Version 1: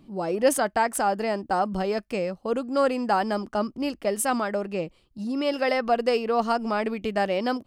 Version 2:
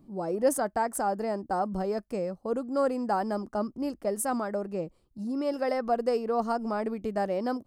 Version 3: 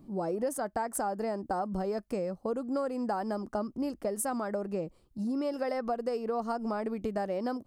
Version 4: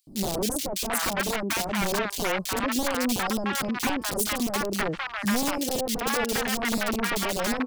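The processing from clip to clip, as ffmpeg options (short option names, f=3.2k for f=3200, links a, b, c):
-af "equalizer=f=2.9k:w=0.98:g=-14.5,volume=-3dB"
-af "acompressor=threshold=-32dB:ratio=6,volume=3dB"
-filter_complex "[0:a]aeval=exprs='(mod(23.7*val(0)+1,2)-1)/23.7':c=same,acrossover=split=810|3200[a][b][c];[a]adelay=70[d];[b]adelay=740[e];[d][e][c]amix=inputs=3:normalize=0,volume=8dB"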